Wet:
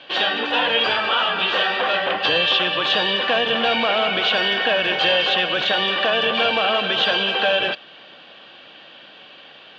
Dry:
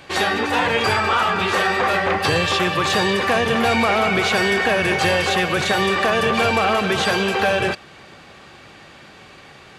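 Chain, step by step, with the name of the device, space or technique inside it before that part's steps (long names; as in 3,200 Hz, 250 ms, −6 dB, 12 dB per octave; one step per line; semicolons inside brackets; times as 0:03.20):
phone earpiece (loudspeaker in its box 360–3,800 Hz, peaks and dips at 390 Hz −9 dB, 840 Hz −6 dB, 1,200 Hz −7 dB, 2,100 Hz −10 dB, 3,100 Hz +9 dB)
level +2.5 dB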